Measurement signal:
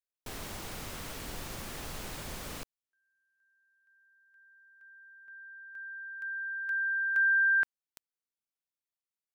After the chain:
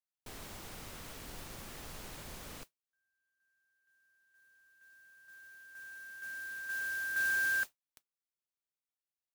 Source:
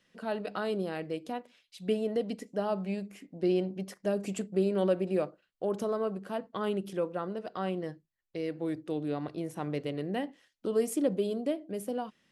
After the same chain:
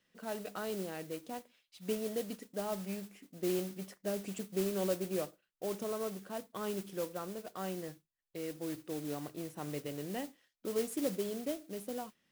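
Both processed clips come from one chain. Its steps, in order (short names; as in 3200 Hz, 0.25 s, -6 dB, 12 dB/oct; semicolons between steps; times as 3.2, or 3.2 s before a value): modulation noise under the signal 12 dB; gain -6.5 dB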